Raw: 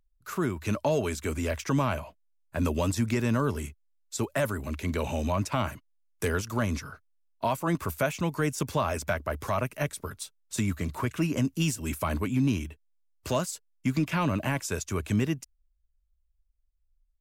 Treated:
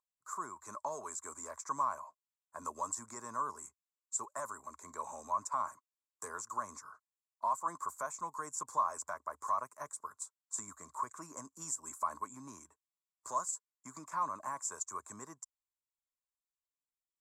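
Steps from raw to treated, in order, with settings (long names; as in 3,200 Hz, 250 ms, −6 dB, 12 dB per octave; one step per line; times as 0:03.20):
pair of resonant band-passes 2,800 Hz, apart 2.8 octaves
level +3 dB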